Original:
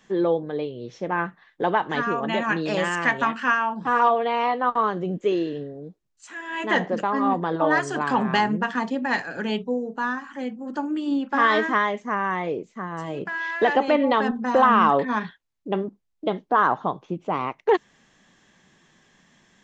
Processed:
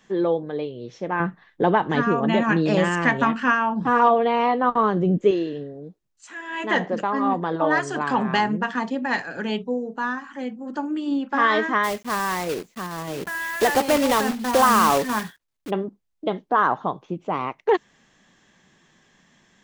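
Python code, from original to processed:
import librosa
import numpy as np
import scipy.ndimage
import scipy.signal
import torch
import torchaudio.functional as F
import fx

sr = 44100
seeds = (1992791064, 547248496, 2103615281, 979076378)

y = fx.low_shelf(x, sr, hz=390.0, db=10.5, at=(1.2, 5.31))
y = fx.block_float(y, sr, bits=3, at=(11.83, 15.69), fade=0.02)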